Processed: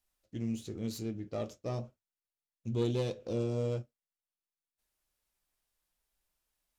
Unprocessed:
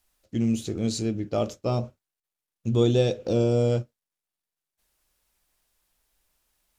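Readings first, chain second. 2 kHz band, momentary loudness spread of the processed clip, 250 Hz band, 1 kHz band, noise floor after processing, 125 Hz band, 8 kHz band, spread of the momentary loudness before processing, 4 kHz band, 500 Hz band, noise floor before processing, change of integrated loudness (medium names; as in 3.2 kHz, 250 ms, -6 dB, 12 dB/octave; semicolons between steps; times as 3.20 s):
-10.0 dB, 12 LU, -10.5 dB, -11.5 dB, under -85 dBFS, -10.0 dB, -12.0 dB, 11 LU, -11.5 dB, -11.0 dB, under -85 dBFS, -11.0 dB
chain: self-modulated delay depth 0.13 ms; flange 0.49 Hz, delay 5 ms, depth 4.3 ms, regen -70%; trim -6.5 dB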